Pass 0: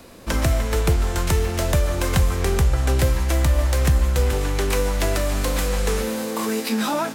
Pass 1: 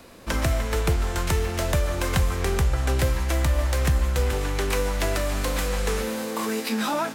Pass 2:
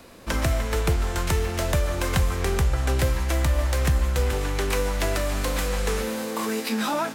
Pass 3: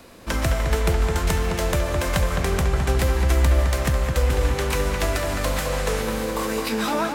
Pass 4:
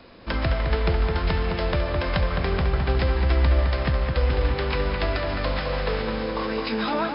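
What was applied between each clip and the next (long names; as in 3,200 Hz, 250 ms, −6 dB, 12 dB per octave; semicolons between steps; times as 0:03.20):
parametric band 1,700 Hz +3 dB 2.7 octaves; level −4 dB
no processing that can be heard
feedback echo with a low-pass in the loop 212 ms, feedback 68%, low-pass 2,600 Hz, level −4 dB; level +1 dB
linear-phase brick-wall low-pass 5,300 Hz; level −1.5 dB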